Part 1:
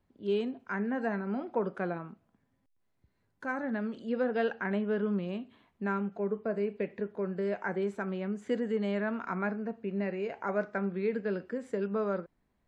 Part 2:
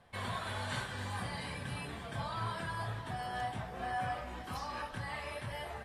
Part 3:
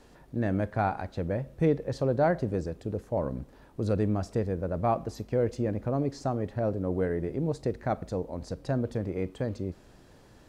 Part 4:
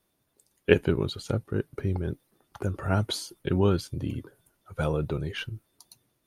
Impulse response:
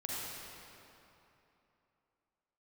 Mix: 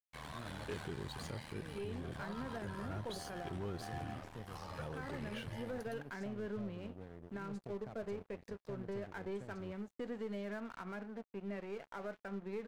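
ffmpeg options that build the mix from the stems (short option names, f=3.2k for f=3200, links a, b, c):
-filter_complex "[0:a]aeval=exprs='if(lt(val(0),0),0.708*val(0),val(0))':c=same,adelay=1500,volume=-6.5dB[a];[1:a]asoftclip=type=hard:threshold=-33.5dB,aeval=exprs='val(0)*sin(2*PI*39*n/s)':c=same,volume=-3.5dB[b];[2:a]acrossover=split=190|3000[c][d][e];[d]acompressor=threshold=-48dB:ratio=1.5[f];[c][f][e]amix=inputs=3:normalize=0,volume=-14dB[g];[3:a]volume=-5.5dB[h];[g][h]amix=inputs=2:normalize=0,asoftclip=type=tanh:threshold=-22.5dB,acompressor=threshold=-41dB:ratio=2,volume=0dB[i];[a][b][i]amix=inputs=3:normalize=0,aeval=exprs='sgn(val(0))*max(abs(val(0))-0.00224,0)':c=same,alimiter=level_in=10dB:limit=-24dB:level=0:latency=1:release=58,volume=-10dB"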